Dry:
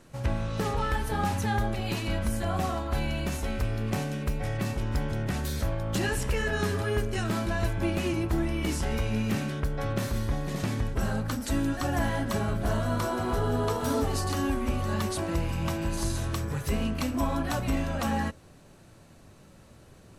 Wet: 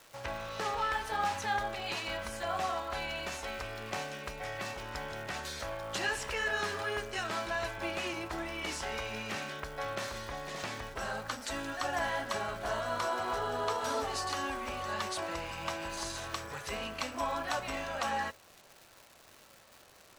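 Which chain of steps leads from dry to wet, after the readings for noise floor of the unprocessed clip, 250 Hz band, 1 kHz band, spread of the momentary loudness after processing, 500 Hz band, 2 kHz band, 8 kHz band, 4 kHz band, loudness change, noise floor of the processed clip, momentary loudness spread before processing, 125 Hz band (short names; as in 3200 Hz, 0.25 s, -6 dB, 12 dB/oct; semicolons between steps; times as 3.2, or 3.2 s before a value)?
-53 dBFS, -15.0 dB, -1.0 dB, 7 LU, -5.0 dB, 0.0 dB, -4.0 dB, -0.5 dB, -6.0 dB, -59 dBFS, 3 LU, -19.0 dB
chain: three-band isolator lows -19 dB, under 510 Hz, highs -15 dB, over 7800 Hz; crackle 450/s -44 dBFS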